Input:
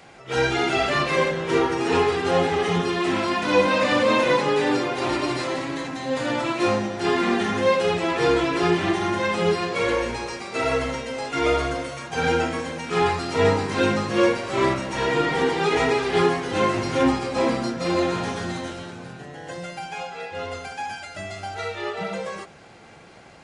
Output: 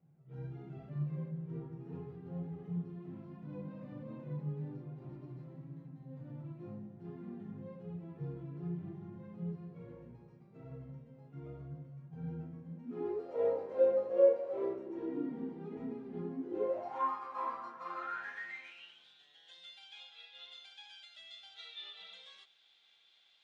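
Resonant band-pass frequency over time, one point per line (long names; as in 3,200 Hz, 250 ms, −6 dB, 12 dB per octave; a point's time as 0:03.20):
resonant band-pass, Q 12
0:12.66 150 Hz
0:13.31 540 Hz
0:14.49 540 Hz
0:15.45 220 Hz
0:16.31 220 Hz
0:17.06 1,100 Hz
0:17.84 1,100 Hz
0:19.09 3,500 Hz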